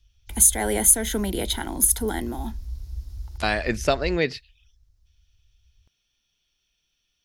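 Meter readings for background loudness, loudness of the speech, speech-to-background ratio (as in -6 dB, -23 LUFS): -38.0 LUFS, -21.0 LUFS, 17.0 dB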